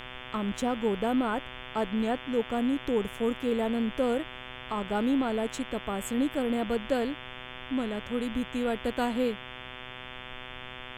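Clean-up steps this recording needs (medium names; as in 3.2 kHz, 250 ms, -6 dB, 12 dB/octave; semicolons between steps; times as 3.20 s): de-hum 126.2 Hz, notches 28; noise print and reduce 30 dB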